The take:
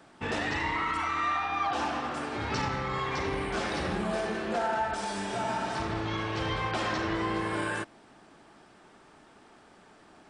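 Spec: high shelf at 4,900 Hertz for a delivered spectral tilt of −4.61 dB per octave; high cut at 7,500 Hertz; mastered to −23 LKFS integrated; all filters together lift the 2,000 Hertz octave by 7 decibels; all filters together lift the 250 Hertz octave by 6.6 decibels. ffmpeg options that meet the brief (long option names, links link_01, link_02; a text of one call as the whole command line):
ffmpeg -i in.wav -af "lowpass=7500,equalizer=frequency=250:width_type=o:gain=9,equalizer=frequency=2000:width_type=o:gain=7,highshelf=frequency=4900:gain=8.5,volume=3dB" out.wav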